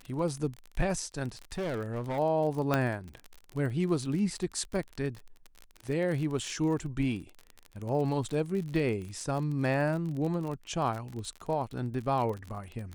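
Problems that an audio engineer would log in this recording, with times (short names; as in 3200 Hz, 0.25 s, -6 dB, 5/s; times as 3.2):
crackle 39/s -35 dBFS
1.42–2.19 clipped -29.5 dBFS
2.74 pop -13 dBFS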